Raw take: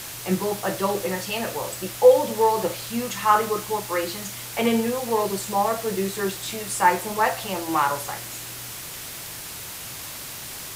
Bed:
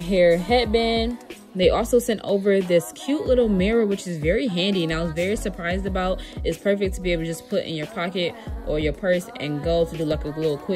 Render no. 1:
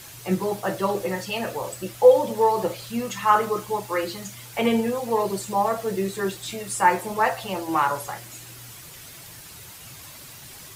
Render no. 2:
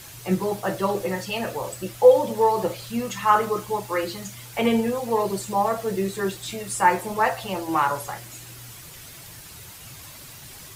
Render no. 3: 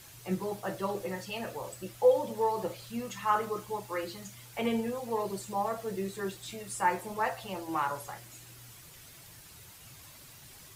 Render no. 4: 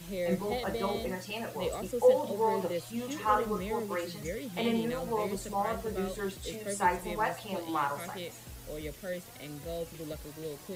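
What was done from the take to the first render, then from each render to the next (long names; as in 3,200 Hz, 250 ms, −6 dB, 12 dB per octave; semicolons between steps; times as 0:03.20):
broadband denoise 9 dB, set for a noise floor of −36 dBFS
low-shelf EQ 89 Hz +5.5 dB
level −9.5 dB
mix in bed −17 dB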